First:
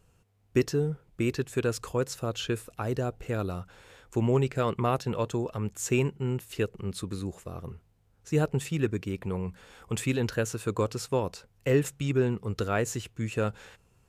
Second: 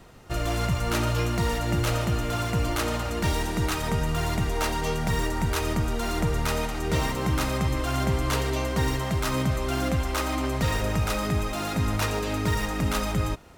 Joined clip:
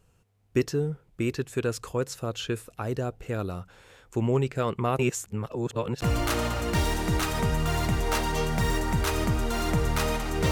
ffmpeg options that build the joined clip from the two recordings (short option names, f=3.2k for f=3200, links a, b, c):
-filter_complex "[0:a]apad=whole_dur=10.51,atrim=end=10.51,asplit=2[a][b];[a]atrim=end=4.992[c];[b]atrim=start=4.988:end=6.022,asetpts=PTS-STARTPTS,areverse[d];[1:a]atrim=start=2.508:end=7[e];[c][d]acrossfade=d=0.004:c1=hsin:c2=hsin[f];[f][e]acrossfade=d=0.004:c1=hsin:c2=hsin"